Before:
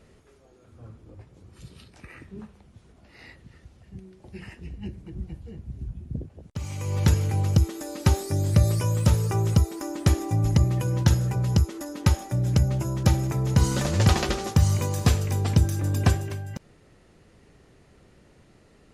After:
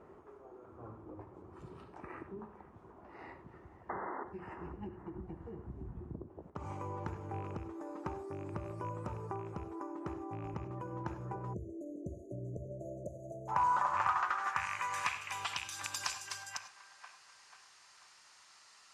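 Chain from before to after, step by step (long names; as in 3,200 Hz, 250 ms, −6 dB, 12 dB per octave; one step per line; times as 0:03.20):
loose part that buzzes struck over −19 dBFS, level −21 dBFS
parametric band 1,200 Hz +6 dB 2.7 octaves
sound drawn into the spectrogram noise, 0:03.89–0:04.24, 210–2,100 Hz −33 dBFS
delay with a band-pass on its return 488 ms, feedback 45%, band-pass 1,100 Hz, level −16 dB
band-pass filter sweep 370 Hz → 4,800 Hz, 0:12.33–0:16.13
downward compressor 6 to 1, threshold −46 dBFS, peak gain reduction 21.5 dB
octave-band graphic EQ 125/250/500/1,000/2,000/4,000/8,000 Hz −3/−8/−11/+9/−3/−7/+5 dB
reverb whose tail is shaped and stops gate 120 ms rising, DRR 10.5 dB
time-frequency box erased 0:11.54–0:13.48, 690–6,000 Hz
level +12.5 dB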